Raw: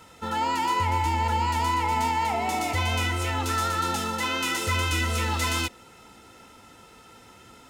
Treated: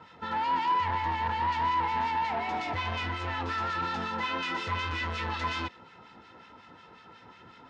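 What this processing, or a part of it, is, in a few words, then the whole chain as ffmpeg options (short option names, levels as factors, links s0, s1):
guitar amplifier with harmonic tremolo: -filter_complex "[0:a]acrossover=split=1400[s0][s1];[s0]aeval=exprs='val(0)*(1-0.7/2+0.7/2*cos(2*PI*5.5*n/s))':c=same[s2];[s1]aeval=exprs='val(0)*(1-0.7/2-0.7/2*cos(2*PI*5.5*n/s))':c=same[s3];[s2][s3]amix=inputs=2:normalize=0,asoftclip=type=tanh:threshold=0.0355,highpass=77,equalizer=f=170:t=q:w=4:g=4,equalizer=f=1000:t=q:w=4:g=7,equalizer=f=1700:t=q:w=4:g=6,lowpass=f=4500:w=0.5412,lowpass=f=4500:w=1.3066"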